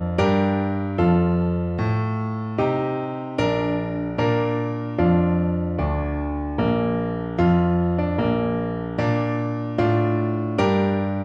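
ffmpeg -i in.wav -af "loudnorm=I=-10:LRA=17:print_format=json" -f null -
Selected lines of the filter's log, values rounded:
"input_i" : "-22.4",
"input_tp" : "-8.3",
"input_lra" : "0.7",
"input_thresh" : "-32.4",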